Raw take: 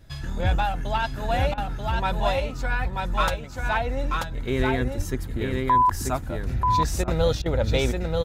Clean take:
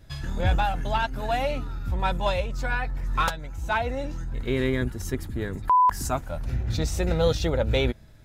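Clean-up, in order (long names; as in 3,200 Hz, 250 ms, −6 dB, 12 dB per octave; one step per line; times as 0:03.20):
click removal
0:04.58–0:04.70: high-pass filter 140 Hz 24 dB per octave
0:04.96–0:05.08: high-pass filter 140 Hz 24 dB per octave
0:07.17–0:07.29: high-pass filter 140 Hz 24 dB per octave
repair the gap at 0:01.54/0:07.04/0:07.42, 36 ms
echo removal 936 ms −3.5 dB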